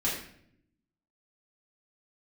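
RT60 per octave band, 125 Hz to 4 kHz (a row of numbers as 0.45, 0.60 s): 1.2, 1.1, 0.75, 0.55, 0.60, 0.50 s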